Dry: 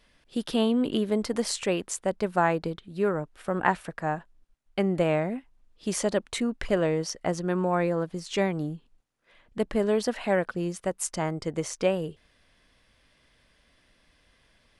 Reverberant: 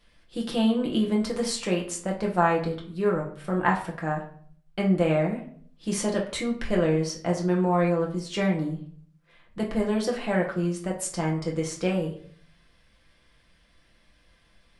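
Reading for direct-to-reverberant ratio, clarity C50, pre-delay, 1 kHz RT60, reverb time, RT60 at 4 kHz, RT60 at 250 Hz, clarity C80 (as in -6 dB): -1.5 dB, 9.0 dB, 6 ms, 0.50 s, 0.55 s, 0.40 s, 0.70 s, 13.5 dB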